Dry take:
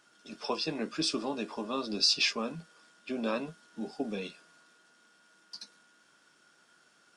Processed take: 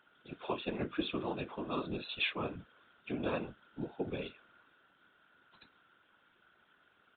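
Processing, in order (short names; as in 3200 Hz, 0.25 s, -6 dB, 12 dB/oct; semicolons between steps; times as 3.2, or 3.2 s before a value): whisperiser; downsampling 8000 Hz; gain -3 dB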